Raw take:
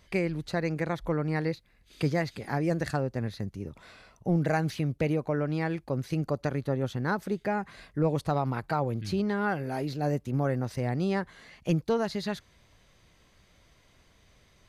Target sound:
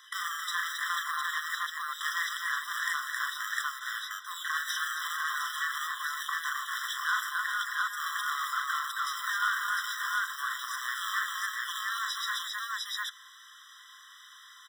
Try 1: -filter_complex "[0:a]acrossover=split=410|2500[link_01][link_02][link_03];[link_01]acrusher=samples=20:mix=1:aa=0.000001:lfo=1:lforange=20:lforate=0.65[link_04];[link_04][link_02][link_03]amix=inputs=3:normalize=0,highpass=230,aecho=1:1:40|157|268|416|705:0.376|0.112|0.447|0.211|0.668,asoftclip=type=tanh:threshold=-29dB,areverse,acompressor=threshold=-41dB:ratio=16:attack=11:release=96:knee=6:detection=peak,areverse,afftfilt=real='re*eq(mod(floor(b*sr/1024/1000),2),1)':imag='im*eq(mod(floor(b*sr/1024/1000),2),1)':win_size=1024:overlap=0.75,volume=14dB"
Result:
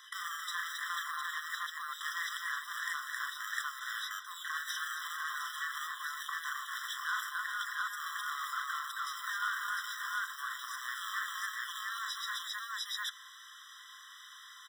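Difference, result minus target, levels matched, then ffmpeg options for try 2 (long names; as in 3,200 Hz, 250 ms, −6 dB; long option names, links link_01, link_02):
downward compressor: peak gain reduction +6 dB
-filter_complex "[0:a]acrossover=split=410|2500[link_01][link_02][link_03];[link_01]acrusher=samples=20:mix=1:aa=0.000001:lfo=1:lforange=20:lforate=0.65[link_04];[link_04][link_02][link_03]amix=inputs=3:normalize=0,highpass=230,aecho=1:1:40|157|268|416|705:0.376|0.112|0.447|0.211|0.668,asoftclip=type=tanh:threshold=-29dB,areverse,acompressor=threshold=-34dB:ratio=16:attack=11:release=96:knee=6:detection=peak,areverse,afftfilt=real='re*eq(mod(floor(b*sr/1024/1000),2),1)':imag='im*eq(mod(floor(b*sr/1024/1000),2),1)':win_size=1024:overlap=0.75,volume=14dB"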